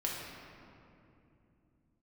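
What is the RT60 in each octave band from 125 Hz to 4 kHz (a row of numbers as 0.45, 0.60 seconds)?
4.3 s, can't be measured, 3.1 s, 2.5 s, 2.2 s, 1.5 s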